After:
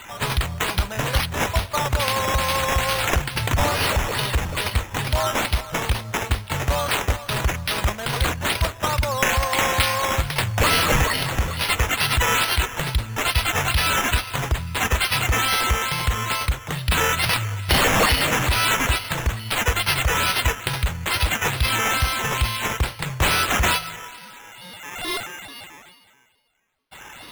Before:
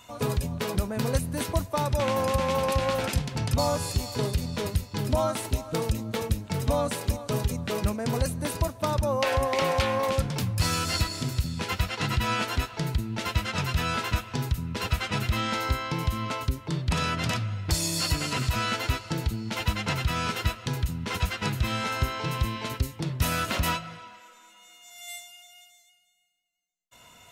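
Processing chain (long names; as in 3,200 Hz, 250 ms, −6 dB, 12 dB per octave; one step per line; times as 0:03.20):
guitar amp tone stack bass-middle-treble 10-0-10
in parallel at +2.5 dB: soft clipping −32 dBFS, distortion −11 dB
on the sum: sample-and-hold swept by an LFO 8×, swing 60% 2.3 Hz
level +8.5 dB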